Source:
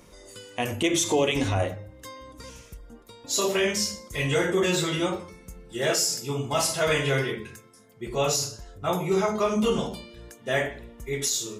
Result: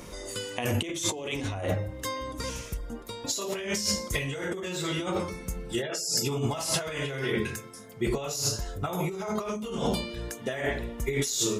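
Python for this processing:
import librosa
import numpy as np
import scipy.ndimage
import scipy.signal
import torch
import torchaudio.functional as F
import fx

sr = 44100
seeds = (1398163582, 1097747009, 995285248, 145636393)

y = fx.spec_gate(x, sr, threshold_db=-25, keep='strong', at=(5.81, 6.24), fade=0.02)
y = fx.high_shelf(y, sr, hz=12000.0, db=8.0, at=(8.27, 9.81))
y = fx.over_compress(y, sr, threshold_db=-33.0, ratio=-1.0)
y = F.gain(torch.from_numpy(y), 2.5).numpy()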